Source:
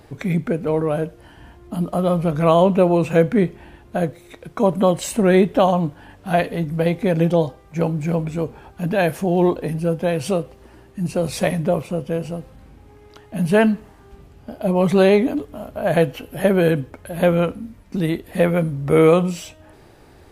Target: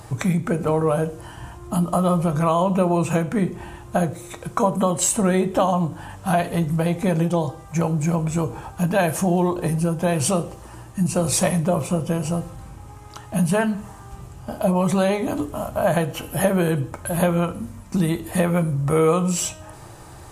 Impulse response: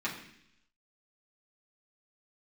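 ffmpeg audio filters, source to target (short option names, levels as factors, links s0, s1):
-filter_complex "[0:a]equalizer=f=125:t=o:w=1:g=8,equalizer=f=250:t=o:w=1:g=-6,equalizer=f=500:t=o:w=1:g=-6,equalizer=f=1000:t=o:w=1:g=7,equalizer=f=2000:t=o:w=1:g=-5,equalizer=f=4000:t=o:w=1:g=-5,equalizer=f=8000:t=o:w=1:g=11,acompressor=threshold=0.0708:ratio=6,asplit=2[s0][s1];[1:a]atrim=start_sample=2205,asetrate=70560,aresample=44100[s2];[s1][s2]afir=irnorm=-1:irlink=0,volume=0.422[s3];[s0][s3]amix=inputs=2:normalize=0,volume=1.88"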